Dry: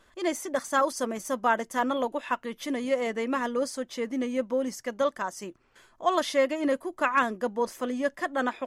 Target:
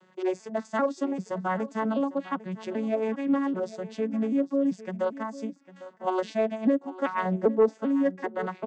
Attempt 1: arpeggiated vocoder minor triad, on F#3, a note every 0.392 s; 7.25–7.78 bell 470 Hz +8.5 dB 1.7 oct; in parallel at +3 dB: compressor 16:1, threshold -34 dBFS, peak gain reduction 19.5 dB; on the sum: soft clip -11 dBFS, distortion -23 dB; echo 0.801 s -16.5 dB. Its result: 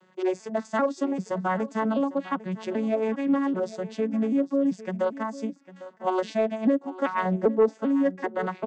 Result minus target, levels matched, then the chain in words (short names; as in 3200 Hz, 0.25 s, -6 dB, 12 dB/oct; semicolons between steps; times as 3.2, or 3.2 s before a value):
compressor: peak gain reduction -9 dB
arpeggiated vocoder minor triad, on F#3, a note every 0.392 s; 7.25–7.78 bell 470 Hz +8.5 dB 1.7 oct; in parallel at +3 dB: compressor 16:1, threshold -43.5 dBFS, peak gain reduction 28.5 dB; on the sum: soft clip -11 dBFS, distortion -24 dB; echo 0.801 s -16.5 dB